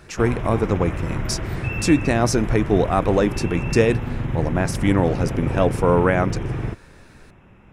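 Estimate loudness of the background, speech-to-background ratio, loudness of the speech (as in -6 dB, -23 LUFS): -27.0 LUFS, 5.5 dB, -21.5 LUFS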